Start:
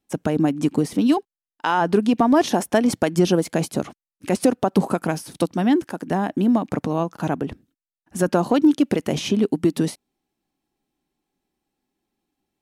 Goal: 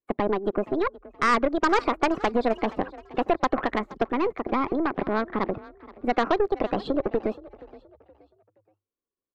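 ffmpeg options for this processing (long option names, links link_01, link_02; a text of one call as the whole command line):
ffmpeg -i in.wav -filter_complex "[0:a]lowpass=1600,acrossover=split=450[link_01][link_02];[link_01]acompressor=threshold=-27dB:ratio=6[link_03];[link_03][link_02]amix=inputs=2:normalize=0,afftdn=noise_reduction=17:noise_floor=-42,asetrate=59535,aresample=44100,aeval=exprs='0.376*(cos(1*acos(clip(val(0)/0.376,-1,1)))-cos(1*PI/2))+0.00596*(cos(4*acos(clip(val(0)/0.376,-1,1)))-cos(4*PI/2))+0.0422*(cos(6*acos(clip(val(0)/0.376,-1,1)))-cos(6*PI/2))':channel_layout=same,bandreject=frequency=910:width=8.8,asplit=2[link_04][link_05];[link_05]asplit=3[link_06][link_07][link_08];[link_06]adelay=473,afreqshift=33,volume=-20dB[link_09];[link_07]adelay=946,afreqshift=66,volume=-29.4dB[link_10];[link_08]adelay=1419,afreqshift=99,volume=-38.7dB[link_11];[link_09][link_10][link_11]amix=inputs=3:normalize=0[link_12];[link_04][link_12]amix=inputs=2:normalize=0" out.wav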